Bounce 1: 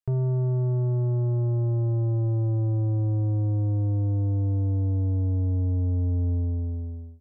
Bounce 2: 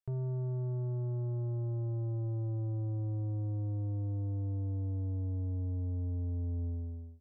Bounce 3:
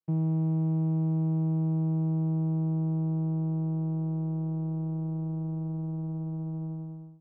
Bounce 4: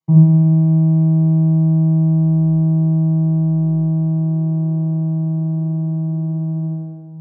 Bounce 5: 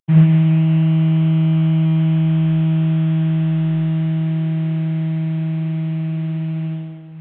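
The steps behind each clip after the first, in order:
limiter -26.5 dBFS, peak gain reduction 4 dB; gain -6.5 dB
vocoder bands 4, saw 160 Hz; gain +7.5 dB
reverb RT60 1.1 s, pre-delay 3 ms, DRR -2 dB; gain -5 dB
CVSD 16 kbps; gain -1 dB

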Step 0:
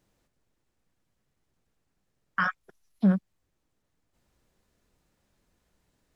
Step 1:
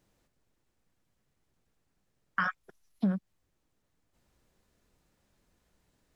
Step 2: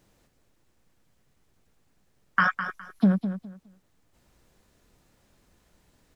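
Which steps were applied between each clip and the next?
compressor 6:1, threshold -25 dBFS, peak gain reduction 8 dB
feedback echo 0.206 s, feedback 22%, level -10 dB; gain +8 dB

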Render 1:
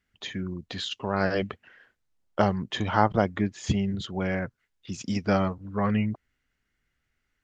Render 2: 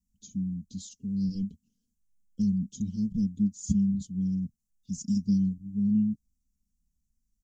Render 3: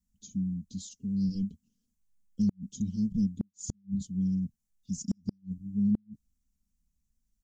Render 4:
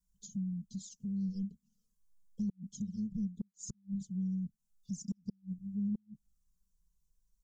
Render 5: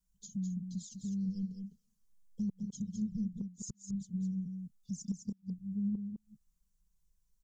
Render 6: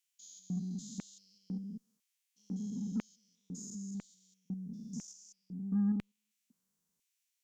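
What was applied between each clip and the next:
elliptic band-stop 200–6400 Hz, stop band 60 dB; comb 4.3 ms, depth 79%
flipped gate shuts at -19 dBFS, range -41 dB
compressor 2:1, threshold -45 dBFS, peak gain reduction 12 dB; fixed phaser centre 430 Hz, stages 8; envelope flanger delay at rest 2 ms, full sweep at -37 dBFS; gain +4 dB
echo 0.206 s -6.5 dB
stepped spectrum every 0.2 s; LFO high-pass square 1 Hz 270–2400 Hz; added harmonics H 6 -33 dB, 8 -31 dB, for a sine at -29 dBFS; gain +4.5 dB

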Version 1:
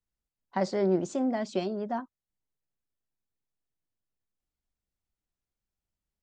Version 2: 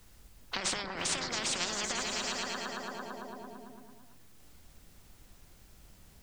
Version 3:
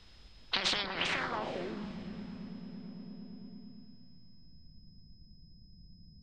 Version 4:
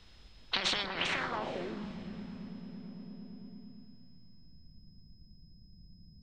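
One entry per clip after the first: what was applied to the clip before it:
negative-ratio compressor -34 dBFS, ratio -1; repeats that get brighter 0.112 s, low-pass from 200 Hz, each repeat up 1 oct, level -3 dB; spectral compressor 10:1; gain +3 dB
low-pass sweep 3800 Hz -> 180 Hz, 0.97–1.9; whine 5100 Hz -64 dBFS; diffused feedback echo 0.467 s, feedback 41%, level -16 dB
notch 4900 Hz, Q 14; on a send at -23.5 dB: reverb RT60 0.50 s, pre-delay 0.118 s

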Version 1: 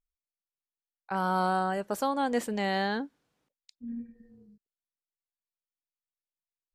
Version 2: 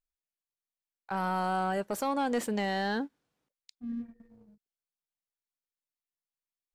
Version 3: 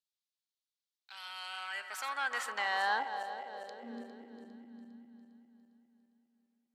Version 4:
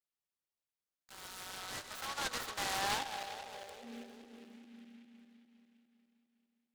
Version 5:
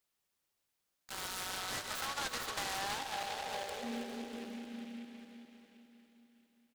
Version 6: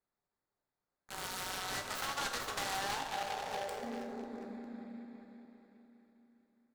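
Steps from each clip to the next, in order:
sample leveller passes 1; limiter -19.5 dBFS, peak gain reduction 3.5 dB; gain -2.5 dB
regenerating reverse delay 0.202 s, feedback 69%, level -12 dB; high shelf 10000 Hz -12 dB; high-pass sweep 3800 Hz -> 240 Hz, 0.99–4.88
noise-modulated delay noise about 2300 Hz, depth 0.12 ms; gain -3.5 dB
compressor 5:1, threshold -47 dBFS, peak gain reduction 15 dB; on a send: feedback echo 0.32 s, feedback 57%, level -12.5 dB; on the sum: gain +10 dB
Wiener smoothing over 15 samples; on a send at -5 dB: reverb, pre-delay 3 ms; on the sum: gain +1 dB

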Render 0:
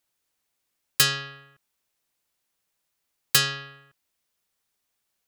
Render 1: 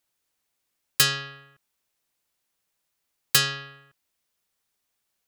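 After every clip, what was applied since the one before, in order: nothing audible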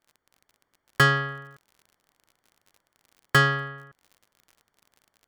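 AGC gain up to 4 dB; polynomial smoothing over 41 samples; crackle 53/s -50 dBFS; gain +8 dB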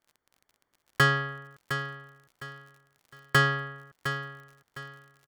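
feedback echo 0.709 s, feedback 29%, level -9.5 dB; gain -3 dB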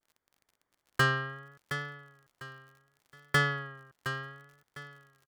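vibrato 0.69 Hz 70 cents; gain -4 dB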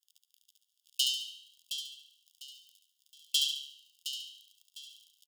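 minimum comb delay 0.6 ms; brick-wall FIR high-pass 2700 Hz; on a send: feedback echo 71 ms, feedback 39%, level -5 dB; on the sum: gain +8 dB

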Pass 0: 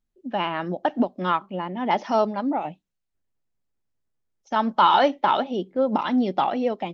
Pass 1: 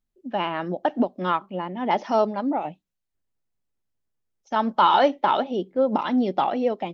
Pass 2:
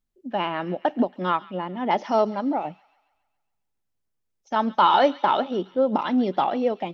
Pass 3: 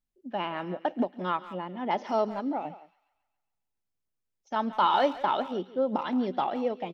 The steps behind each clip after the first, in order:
dynamic EQ 460 Hz, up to +3 dB, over -31 dBFS, Q 0.96; gain -1.5 dB
thin delay 0.138 s, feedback 52%, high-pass 2000 Hz, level -15 dB
speakerphone echo 0.17 s, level -15 dB; gain -6 dB

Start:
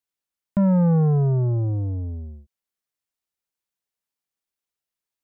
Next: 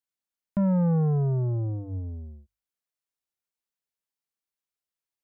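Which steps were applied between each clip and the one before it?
notches 50/100 Hz; gain -5 dB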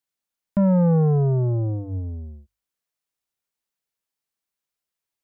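dynamic EQ 490 Hz, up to +4 dB, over -40 dBFS, Q 1.2; gain +4.5 dB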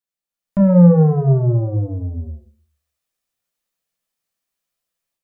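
AGC gain up to 10 dB; reverb RT60 0.40 s, pre-delay 4 ms, DRR 5 dB; gain -6 dB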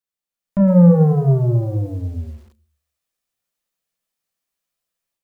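lo-fi delay 0.109 s, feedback 35%, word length 7-bit, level -14 dB; gain -1 dB

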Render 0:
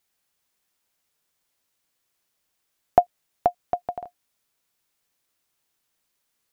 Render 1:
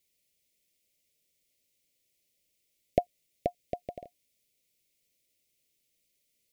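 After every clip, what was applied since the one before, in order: elliptic band-stop 600–2100 Hz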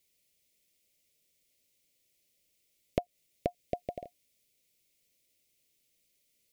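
compressor 6:1, threshold -28 dBFS, peak gain reduction 9.5 dB; gain +2 dB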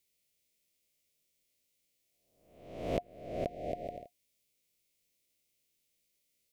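spectral swells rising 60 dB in 0.82 s; gain -6.5 dB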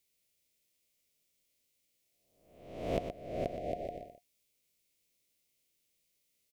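echo 0.121 s -8.5 dB

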